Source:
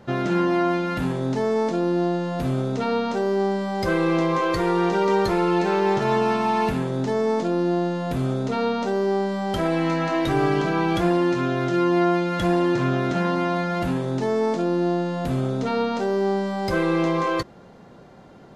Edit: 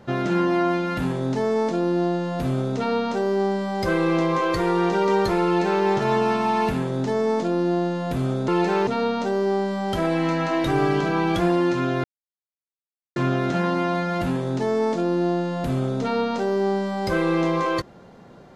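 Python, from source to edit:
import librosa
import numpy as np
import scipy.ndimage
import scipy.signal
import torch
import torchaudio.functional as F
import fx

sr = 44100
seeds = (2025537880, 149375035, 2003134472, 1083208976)

y = fx.edit(x, sr, fx.duplicate(start_s=5.45, length_s=0.39, to_s=8.48),
    fx.silence(start_s=11.65, length_s=1.12), tone=tone)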